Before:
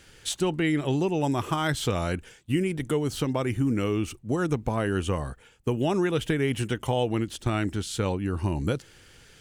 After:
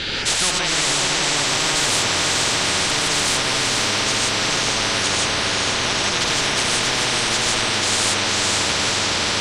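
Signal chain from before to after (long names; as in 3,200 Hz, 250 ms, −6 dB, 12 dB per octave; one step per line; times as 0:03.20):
low-pass with resonance 3,800 Hz, resonance Q 5.8
feedback delay with all-pass diffusion 492 ms, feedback 61%, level −3.5 dB
reverb whose tail is shaped and stops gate 190 ms rising, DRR −5 dB
every bin compressed towards the loudest bin 10 to 1
level −2 dB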